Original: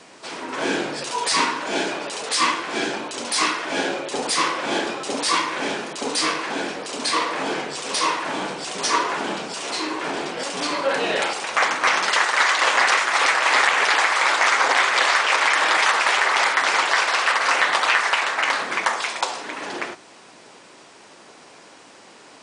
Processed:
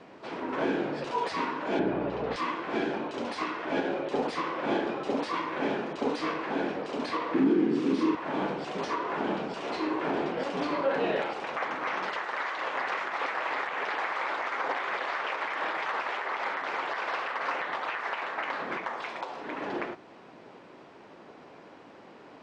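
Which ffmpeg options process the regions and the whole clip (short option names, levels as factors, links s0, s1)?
-filter_complex "[0:a]asettb=1/sr,asplit=3[s0][s1][s2];[s0]atrim=end=1.794[s3];[s1]atrim=start=1.79:end=2.36,asetpts=PTS-STARTPTS,afade=t=in:d=0.004:c=qsin,afade=t=out:st=0.566:d=0.004:c=qsin,aemphasis=mode=reproduction:type=riaa,aeval=exprs='val(0)+0.0126*(sin(2*PI*60*n/s)+sin(2*PI*2*60*n/s)/2+sin(2*PI*3*60*n/s)/3+sin(2*PI*4*60*n/s)/4+sin(2*PI*5*60*n/s)/5)':c=same,highpass=120,lowpass=5700[s4];[s2]atrim=start=2.356[s5];[s3][s4]acrossfade=d=0.004:c1=hsin:c2=qsin[s6];[s6][s5]acrossfade=d=0.004:c1=qsin:c2=hsin,asettb=1/sr,asplit=3[s7][s8][s9];[s7]atrim=end=7.344[s10];[s8]atrim=start=7.34:end=8.15,asetpts=PTS-STARTPTS,afade=t=in:d=0.004:c=qsin,afade=t=out:st=0.806:d=0.004:c=qsin,highpass=180,lowshelf=f=430:t=q:w=3:g=11.5,asplit=2[s11][s12];[s12]adelay=45,volume=0.75[s13];[s11][s13]amix=inputs=2:normalize=0,atrim=end_sample=35721[s14];[s9]atrim=start=8.146[s15];[s10][s14]acrossfade=d=0.004:c1=hsin:c2=qsin[s16];[s16][s15]acrossfade=d=0.004:c1=qsin:c2=hsin,alimiter=limit=0.178:level=0:latency=1:release=313,lowpass=3100,tiltshelf=f=970:g=5,volume=0.631"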